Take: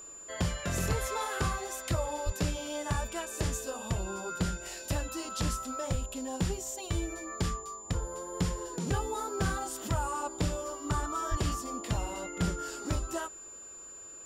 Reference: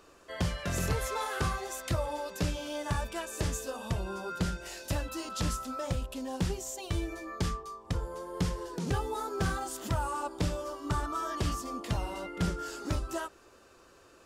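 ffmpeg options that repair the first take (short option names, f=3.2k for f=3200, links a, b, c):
-filter_complex "[0:a]bandreject=f=7.1k:w=30,asplit=3[a][b][c];[a]afade=t=out:st=2.25:d=0.02[d];[b]highpass=f=140:w=0.5412,highpass=f=140:w=1.3066,afade=t=in:st=2.25:d=0.02,afade=t=out:st=2.37:d=0.02[e];[c]afade=t=in:st=2.37:d=0.02[f];[d][e][f]amix=inputs=3:normalize=0,asplit=3[g][h][i];[g]afade=t=out:st=5.91:d=0.02[j];[h]highpass=f=140:w=0.5412,highpass=f=140:w=1.3066,afade=t=in:st=5.91:d=0.02,afade=t=out:st=6.03:d=0.02[k];[i]afade=t=in:st=6.03:d=0.02[l];[j][k][l]amix=inputs=3:normalize=0,asplit=3[m][n][o];[m]afade=t=out:st=11.3:d=0.02[p];[n]highpass=f=140:w=0.5412,highpass=f=140:w=1.3066,afade=t=in:st=11.3:d=0.02,afade=t=out:st=11.42:d=0.02[q];[o]afade=t=in:st=11.42:d=0.02[r];[p][q][r]amix=inputs=3:normalize=0"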